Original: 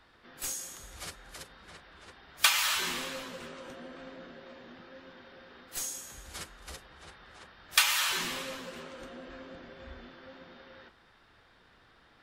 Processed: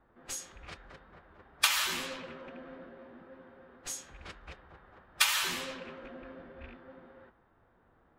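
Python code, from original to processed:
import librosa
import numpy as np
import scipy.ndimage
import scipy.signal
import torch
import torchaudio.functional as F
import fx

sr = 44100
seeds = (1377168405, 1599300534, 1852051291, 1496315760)

y = fx.rattle_buzz(x, sr, strikes_db=-47.0, level_db=-31.0)
y = fx.env_lowpass(y, sr, base_hz=890.0, full_db=-31.0)
y = fx.stretch_vocoder(y, sr, factor=0.67)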